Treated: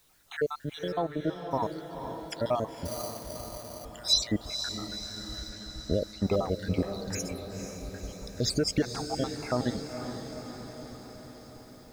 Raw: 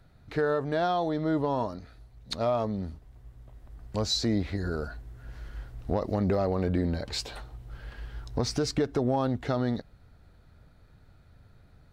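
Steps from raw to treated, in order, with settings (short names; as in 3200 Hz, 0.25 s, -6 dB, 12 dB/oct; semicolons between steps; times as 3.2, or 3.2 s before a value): random spectral dropouts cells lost 68%; added noise pink -71 dBFS; 0.92–1.51 air absorption 390 m; 5.49–6.25 low-pass opened by the level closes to 2700 Hz, open at -27 dBFS; on a send: diffused feedback echo 0.491 s, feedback 65%, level -8 dB; 2.85–3.85 on the sum: sample-rate reducer 5300 Hz, jitter 0%; high shelf 4900 Hz +12 dB; gain +1 dB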